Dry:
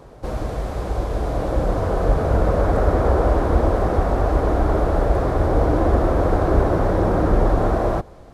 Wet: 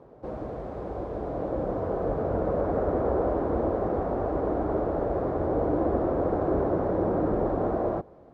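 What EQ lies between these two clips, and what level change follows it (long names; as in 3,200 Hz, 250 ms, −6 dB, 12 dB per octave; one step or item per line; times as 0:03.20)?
resonant band-pass 380 Hz, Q 0.62
−4.5 dB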